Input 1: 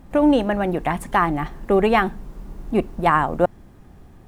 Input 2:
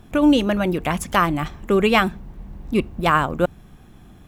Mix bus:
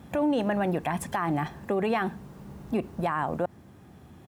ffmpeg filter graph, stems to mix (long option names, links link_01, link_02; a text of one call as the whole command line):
ffmpeg -i stem1.wav -i stem2.wav -filter_complex "[0:a]volume=-2.5dB,asplit=2[link_01][link_02];[1:a]acompressor=threshold=-22dB:ratio=6,adelay=1,volume=-2.5dB[link_03];[link_02]apad=whole_len=188373[link_04];[link_03][link_04]sidechaincompress=threshold=-25dB:ratio=8:attack=16:release=1420[link_05];[link_01][link_05]amix=inputs=2:normalize=0,highpass=frequency=78:width=0.5412,highpass=frequency=78:width=1.3066,alimiter=limit=-18.5dB:level=0:latency=1:release=57" out.wav